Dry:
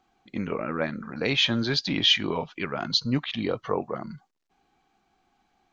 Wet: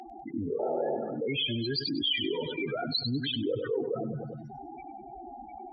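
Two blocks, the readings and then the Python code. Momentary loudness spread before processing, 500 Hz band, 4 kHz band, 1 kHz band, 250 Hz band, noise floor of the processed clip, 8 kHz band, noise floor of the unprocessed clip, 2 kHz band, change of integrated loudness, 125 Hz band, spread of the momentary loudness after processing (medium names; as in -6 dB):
14 LU, 0.0 dB, -6.5 dB, -3.5 dB, -4.0 dB, -46 dBFS, no reading, -72 dBFS, -8.0 dB, -5.0 dB, -4.0 dB, 16 LU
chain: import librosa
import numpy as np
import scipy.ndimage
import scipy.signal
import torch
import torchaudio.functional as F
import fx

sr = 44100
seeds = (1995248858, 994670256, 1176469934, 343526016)

p1 = fx.rider(x, sr, range_db=5, speed_s=0.5)
p2 = x + (p1 * 10.0 ** (3.0 / 20.0))
p3 = fx.tremolo_random(p2, sr, seeds[0], hz=1.7, depth_pct=55)
p4 = fx.spec_topn(p3, sr, count=8)
p5 = fx.lowpass(p4, sr, hz=2800.0, slope=6)
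p6 = fx.peak_eq(p5, sr, hz=540.0, db=-10.0, octaves=2.5)
p7 = fx.spec_paint(p6, sr, seeds[1], shape='noise', start_s=0.59, length_s=0.38, low_hz=340.0, high_hz=900.0, level_db=-29.0)
p8 = scipy.signal.sosfilt(scipy.signal.butter(2, 120.0, 'highpass', fs=sr, output='sos'), p7)
p9 = fx.fixed_phaser(p8, sr, hz=450.0, stages=4)
p10 = p9 + fx.echo_feedback(p9, sr, ms=98, feedback_pct=45, wet_db=-15, dry=0)
p11 = fx.env_flatten(p10, sr, amount_pct=70)
y = p11 * 10.0 ** (-6.0 / 20.0)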